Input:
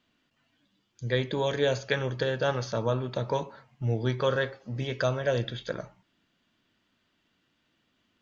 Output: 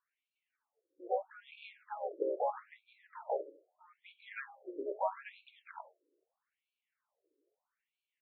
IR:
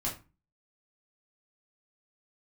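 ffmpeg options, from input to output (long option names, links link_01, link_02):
-filter_complex "[0:a]firequalizer=gain_entry='entry(160,0);entry(490,-7);entry(4100,-28);entry(6500,-7)':delay=0.05:min_phase=1,asplit=3[link_01][link_02][link_03];[link_02]asetrate=37084,aresample=44100,atempo=1.18921,volume=-8dB[link_04];[link_03]asetrate=66075,aresample=44100,atempo=0.66742,volume=-2dB[link_05];[link_01][link_04][link_05]amix=inputs=3:normalize=0,afftfilt=real='re*between(b*sr/1024,410*pow(3200/410,0.5+0.5*sin(2*PI*0.78*pts/sr))/1.41,410*pow(3200/410,0.5+0.5*sin(2*PI*0.78*pts/sr))*1.41)':imag='im*between(b*sr/1024,410*pow(3200/410,0.5+0.5*sin(2*PI*0.78*pts/sr))/1.41,410*pow(3200/410,0.5+0.5*sin(2*PI*0.78*pts/sr))*1.41)':win_size=1024:overlap=0.75,volume=1dB"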